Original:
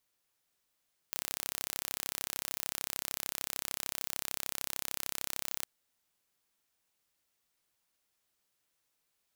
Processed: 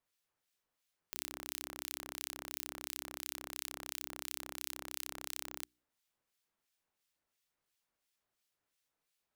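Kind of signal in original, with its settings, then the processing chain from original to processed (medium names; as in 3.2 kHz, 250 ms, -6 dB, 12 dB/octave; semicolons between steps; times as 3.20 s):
pulse train 33.3 per s, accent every 0, -8 dBFS 4.51 s
treble shelf 4.9 kHz -4.5 dB; hum notches 60/120/180/240/300/360 Hz; harmonic tremolo 2.9 Hz, depth 70%, crossover 1.9 kHz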